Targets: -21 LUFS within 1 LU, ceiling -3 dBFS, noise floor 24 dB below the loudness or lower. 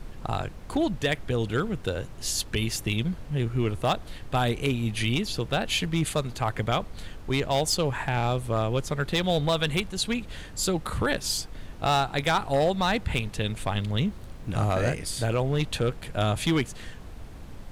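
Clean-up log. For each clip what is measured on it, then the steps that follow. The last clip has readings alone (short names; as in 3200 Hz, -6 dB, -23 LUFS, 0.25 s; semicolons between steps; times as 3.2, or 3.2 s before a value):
clipped 0.7%; flat tops at -17.0 dBFS; noise floor -42 dBFS; noise floor target -52 dBFS; loudness -27.5 LUFS; peak -17.0 dBFS; loudness target -21.0 LUFS
-> clip repair -17 dBFS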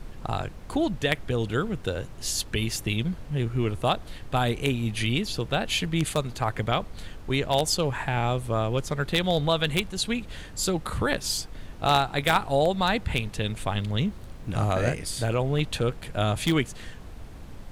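clipped 0.0%; noise floor -42 dBFS; noise floor target -51 dBFS
-> noise print and reduce 9 dB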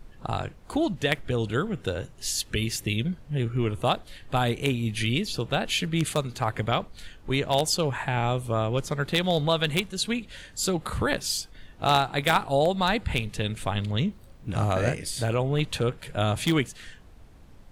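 noise floor -50 dBFS; noise floor target -51 dBFS
-> noise print and reduce 6 dB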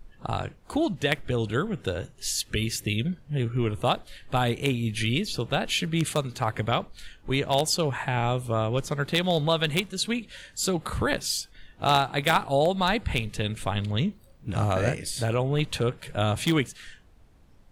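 noise floor -55 dBFS; loudness -27.0 LUFS; peak -8.0 dBFS; loudness target -21.0 LUFS
-> gain +6 dB; limiter -3 dBFS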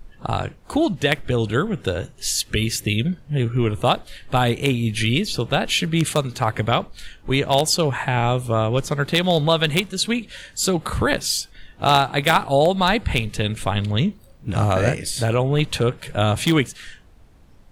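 loudness -21.0 LUFS; peak -3.0 dBFS; noise floor -49 dBFS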